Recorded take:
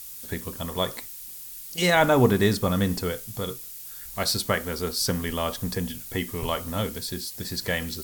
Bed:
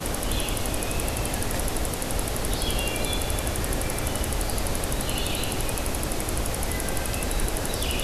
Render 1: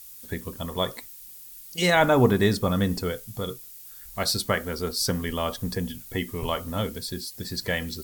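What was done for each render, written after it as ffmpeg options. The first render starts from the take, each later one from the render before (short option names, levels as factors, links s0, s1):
-af "afftdn=nr=6:nf=-40"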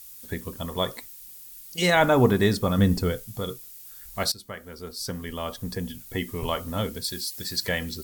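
-filter_complex "[0:a]asettb=1/sr,asplit=3[s0][s1][s2];[s0]atrim=end=2.784[s3];[s1]atrim=start=2.78:end=3.23,asetpts=PTS-STARTPTS,afade=t=in:d=0.004:c=qsin,afade=t=out:st=0.446:d=0.004:c=qsin,lowshelf=f=240:g=7.5[s4];[s2]atrim=start=3.226[s5];[s3][s4]acrossfade=d=0.004:c1=hsin:c2=qsin[s6];[s6][s5]acrossfade=d=0.004:c1=qsin:c2=hsin,asettb=1/sr,asplit=3[s7][s8][s9];[s7]atrim=end=7.044[s10];[s8]atrim=start=7.04:end=7.69,asetpts=PTS-STARTPTS,afade=t=in:d=0.004:c=qsin,afade=t=out:st=0.646:d=0.004:c=qsin,tiltshelf=f=970:g=-5[s11];[s9]atrim=start=7.686[s12];[s10][s11]acrossfade=d=0.004:c1=hsin:c2=qsin[s13];[s13][s12]acrossfade=d=0.004:c1=qsin:c2=hsin,asplit=2[s14][s15];[s14]atrim=end=4.32,asetpts=PTS-STARTPTS,afade=t=out:st=4.316:d=0.004:c=hsin:silence=0.125893[s16];[s15]atrim=start=4.32,asetpts=PTS-STARTPTS,afade=t=in:d=2.01:silence=0.125893[s17];[s16][s17]concat=n=2:v=0:a=1"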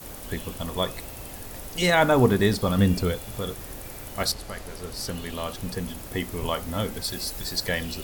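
-filter_complex "[1:a]volume=0.224[s0];[0:a][s0]amix=inputs=2:normalize=0"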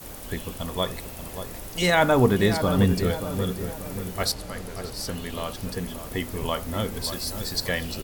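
-filter_complex "[0:a]asplit=2[s0][s1];[s1]adelay=582,lowpass=f=1400:p=1,volume=0.376,asplit=2[s2][s3];[s3]adelay=582,lowpass=f=1400:p=1,volume=0.51,asplit=2[s4][s5];[s5]adelay=582,lowpass=f=1400:p=1,volume=0.51,asplit=2[s6][s7];[s7]adelay=582,lowpass=f=1400:p=1,volume=0.51,asplit=2[s8][s9];[s9]adelay=582,lowpass=f=1400:p=1,volume=0.51,asplit=2[s10][s11];[s11]adelay=582,lowpass=f=1400:p=1,volume=0.51[s12];[s0][s2][s4][s6][s8][s10][s12]amix=inputs=7:normalize=0"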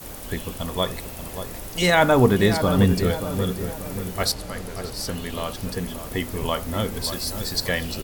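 -af "volume=1.33"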